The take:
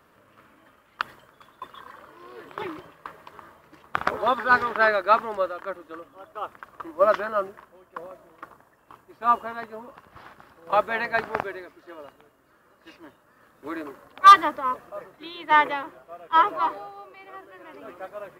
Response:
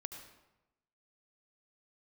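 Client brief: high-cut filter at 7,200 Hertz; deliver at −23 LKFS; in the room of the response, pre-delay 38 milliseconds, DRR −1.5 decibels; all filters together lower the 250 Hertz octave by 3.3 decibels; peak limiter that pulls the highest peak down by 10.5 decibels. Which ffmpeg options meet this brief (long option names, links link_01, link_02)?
-filter_complex "[0:a]lowpass=7200,equalizer=frequency=250:width_type=o:gain=-4.5,alimiter=limit=-14dB:level=0:latency=1,asplit=2[link_01][link_02];[1:a]atrim=start_sample=2205,adelay=38[link_03];[link_02][link_03]afir=irnorm=-1:irlink=0,volume=4dB[link_04];[link_01][link_04]amix=inputs=2:normalize=0,volume=1.5dB"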